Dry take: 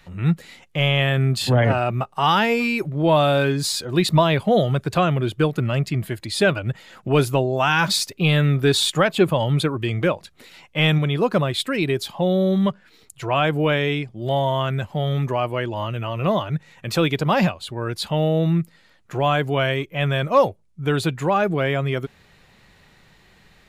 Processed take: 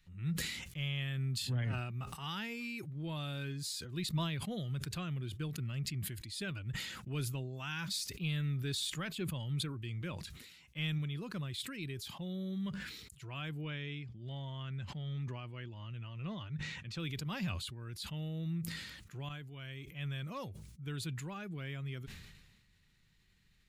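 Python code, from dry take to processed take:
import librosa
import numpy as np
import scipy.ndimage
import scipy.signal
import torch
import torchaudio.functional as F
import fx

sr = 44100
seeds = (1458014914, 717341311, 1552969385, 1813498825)

y = fx.lowpass(x, sr, hz=5200.0, slope=12, at=(13.61, 17.0))
y = fx.edit(y, sr, fx.fade_in_from(start_s=19.29, length_s=0.78, floor_db=-14.0), tone=tone)
y = fx.tone_stack(y, sr, knobs='6-0-2')
y = fx.sustainer(y, sr, db_per_s=42.0)
y = y * librosa.db_to_amplitude(-1.5)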